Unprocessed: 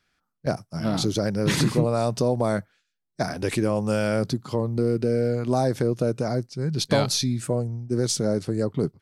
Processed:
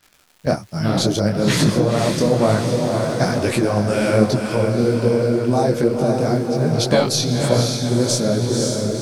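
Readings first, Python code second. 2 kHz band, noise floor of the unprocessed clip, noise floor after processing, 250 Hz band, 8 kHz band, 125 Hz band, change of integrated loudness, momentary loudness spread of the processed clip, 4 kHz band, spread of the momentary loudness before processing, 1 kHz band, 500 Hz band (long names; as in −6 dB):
+7.0 dB, −78 dBFS, −53 dBFS, +6.5 dB, +6.5 dB, +6.0 dB, +6.5 dB, 3 LU, +6.5 dB, 7 LU, +7.0 dB, +6.5 dB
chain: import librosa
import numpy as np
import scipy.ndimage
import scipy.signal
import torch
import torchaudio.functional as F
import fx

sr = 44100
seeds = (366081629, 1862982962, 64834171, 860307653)

p1 = fx.fade_out_tail(x, sr, length_s=0.8)
p2 = fx.dmg_crackle(p1, sr, seeds[0], per_s=150.0, level_db=-42.0)
p3 = fx.echo_diffused(p2, sr, ms=532, feedback_pct=56, wet_db=-4.5)
p4 = fx.rider(p3, sr, range_db=4, speed_s=0.5)
p5 = p3 + (p4 * 10.0 ** (2.5 / 20.0))
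p6 = fx.detune_double(p5, sr, cents=41)
y = p6 * 10.0 ** (1.5 / 20.0)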